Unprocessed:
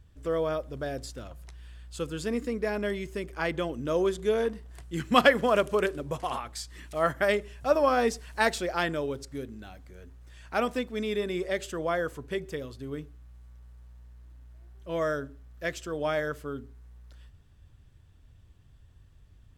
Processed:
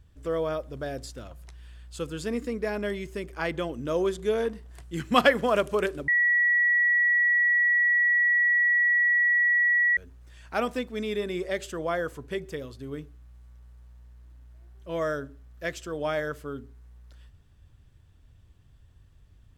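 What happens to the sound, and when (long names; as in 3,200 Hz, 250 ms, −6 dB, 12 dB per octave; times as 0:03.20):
0:06.08–0:09.97: beep over 1,930 Hz −19 dBFS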